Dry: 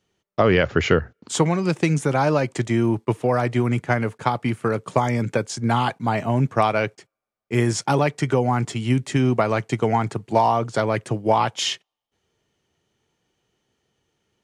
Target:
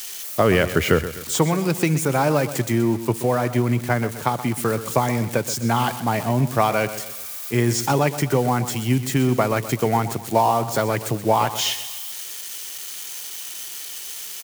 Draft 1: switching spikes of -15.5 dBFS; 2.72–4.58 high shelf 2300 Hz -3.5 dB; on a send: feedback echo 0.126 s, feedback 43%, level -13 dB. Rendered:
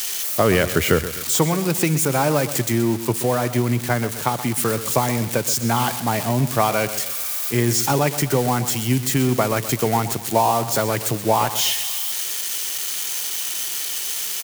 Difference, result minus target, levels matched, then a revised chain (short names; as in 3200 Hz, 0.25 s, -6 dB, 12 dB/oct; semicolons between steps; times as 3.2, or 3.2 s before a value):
switching spikes: distortion +7 dB
switching spikes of -23 dBFS; 2.72–4.58 high shelf 2300 Hz -3.5 dB; on a send: feedback echo 0.126 s, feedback 43%, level -13 dB